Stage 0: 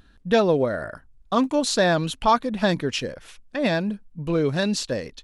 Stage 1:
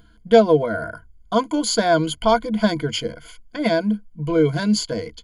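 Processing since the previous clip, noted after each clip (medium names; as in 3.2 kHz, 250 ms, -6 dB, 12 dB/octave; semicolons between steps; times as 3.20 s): rippled EQ curve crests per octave 1.8, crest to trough 18 dB; trim -1 dB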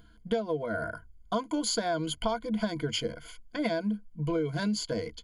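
compression 16:1, threshold -21 dBFS, peak gain reduction 15.5 dB; trim -4.5 dB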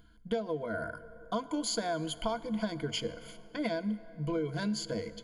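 plate-style reverb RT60 4.2 s, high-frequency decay 0.45×, DRR 15 dB; trim -3.5 dB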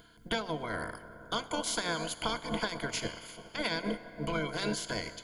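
spectral peaks clipped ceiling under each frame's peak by 22 dB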